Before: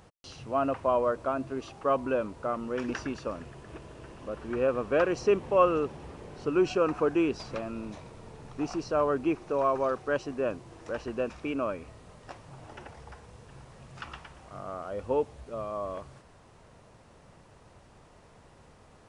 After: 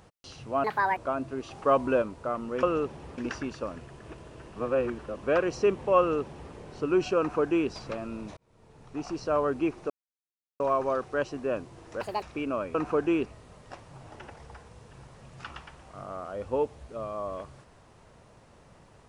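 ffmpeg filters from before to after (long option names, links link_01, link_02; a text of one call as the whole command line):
ffmpeg -i in.wav -filter_complex "[0:a]asplit=15[link_01][link_02][link_03][link_04][link_05][link_06][link_07][link_08][link_09][link_10][link_11][link_12][link_13][link_14][link_15];[link_01]atrim=end=0.644[link_16];[link_02]atrim=start=0.64:end=1.16,asetpts=PTS-STARTPTS,asetrate=69678,aresample=44100[link_17];[link_03]atrim=start=1.156:end=1.702[link_18];[link_04]atrim=start=1.698:end=2.212,asetpts=PTS-STARTPTS,volume=3.5dB[link_19];[link_05]atrim=start=2.208:end=2.822[link_20];[link_06]atrim=start=5.628:end=6.182[link_21];[link_07]atrim=start=2.818:end=4.202[link_22];[link_08]atrim=start=4.198:end=4.872,asetpts=PTS-STARTPTS,areverse[link_23];[link_09]atrim=start=4.868:end=8.01,asetpts=PTS-STARTPTS,afade=type=out:start_time=3.138:duration=0.004:curve=hsin[link_24];[link_10]atrim=start=8.01:end=9.54,asetpts=PTS-STARTPTS,afade=type=in:duration=0.89,afade=type=out:start_time=1.526:duration=0.004:curve=hsin,apad=pad_dur=0.7[link_25];[link_11]atrim=start=9.54:end=10.954,asetpts=PTS-STARTPTS,afade=type=in:duration=0.004:curve=hsin[link_26];[link_12]atrim=start=10.95:end=11.31,asetpts=PTS-STARTPTS,asetrate=73206,aresample=44100[link_27];[link_13]atrim=start=11.306:end=11.832[link_28];[link_14]atrim=start=6.828:end=7.342[link_29];[link_15]atrim=start=11.828[link_30];[link_16][link_17]acrossfade=duration=0.004:curve1=hsin:curve2=hsin[link_31];[link_31][link_18]acrossfade=duration=0.004:curve1=hsin:curve2=hsin[link_32];[link_32][link_19]acrossfade=duration=0.004:curve1=hsin:curve2=hsin[link_33];[link_33][link_20]acrossfade=duration=0.004:curve1=hsin:curve2=hsin[link_34];[link_34][link_21]acrossfade=duration=0.004:curve1=hsin:curve2=hsin[link_35];[link_35][link_22]acrossfade=duration=0.004:curve1=hsin:curve2=hsin[link_36];[link_36][link_23]acrossfade=duration=0.004:curve1=hsin:curve2=hsin[link_37];[link_24][link_25][link_26]concat=n=3:v=0:a=1[link_38];[link_37][link_38]acrossfade=duration=0.004:curve1=hsin:curve2=hsin[link_39];[link_39][link_27]acrossfade=duration=0.004:curve1=hsin:curve2=hsin[link_40];[link_40][link_28]acrossfade=duration=0.004:curve1=hsin:curve2=hsin[link_41];[link_41][link_29]acrossfade=duration=0.004:curve1=hsin:curve2=hsin[link_42];[link_42][link_30]acrossfade=duration=0.004:curve1=hsin:curve2=hsin" out.wav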